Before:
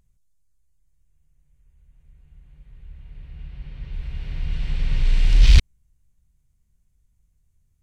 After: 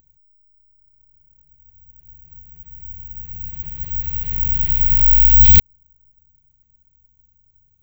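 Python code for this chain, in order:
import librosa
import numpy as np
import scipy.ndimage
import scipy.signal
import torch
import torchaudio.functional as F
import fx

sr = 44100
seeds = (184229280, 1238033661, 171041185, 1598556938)

y = 10.0 ** (-10.0 / 20.0) * np.tanh(x / 10.0 ** (-10.0 / 20.0))
y = (np.kron(scipy.signal.resample_poly(y, 1, 2), np.eye(2)[0]) * 2)[:len(y)]
y = F.gain(torch.from_numpy(y), 2.0).numpy()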